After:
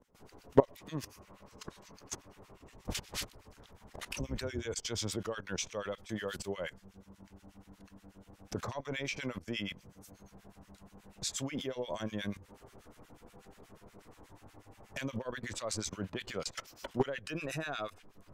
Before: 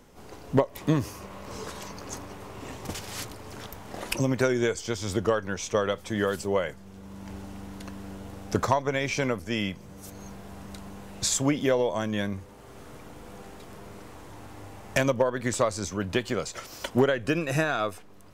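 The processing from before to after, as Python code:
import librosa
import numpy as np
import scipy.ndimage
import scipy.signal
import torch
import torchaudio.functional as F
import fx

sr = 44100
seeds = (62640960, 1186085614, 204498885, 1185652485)

y = fx.octave_divider(x, sr, octaves=2, level_db=0.0, at=(2.48, 4.89))
y = fx.dynamic_eq(y, sr, hz=3400.0, q=0.81, threshold_db=-45.0, ratio=4.0, max_db=5)
y = fx.level_steps(y, sr, step_db=18)
y = fx.harmonic_tremolo(y, sr, hz=8.3, depth_pct=100, crossover_hz=1300.0)
y = y * 10.0 ** (2.5 / 20.0)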